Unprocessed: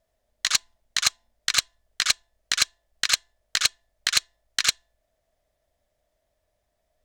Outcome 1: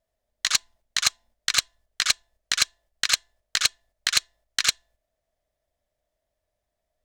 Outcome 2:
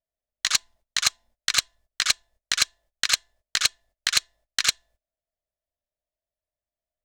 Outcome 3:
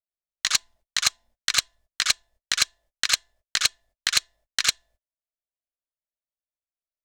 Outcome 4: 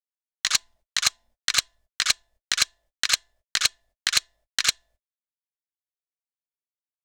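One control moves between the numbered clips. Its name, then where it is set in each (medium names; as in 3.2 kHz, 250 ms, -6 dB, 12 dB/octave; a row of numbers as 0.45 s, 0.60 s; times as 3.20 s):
gate, range: -6 dB, -20 dB, -35 dB, -54 dB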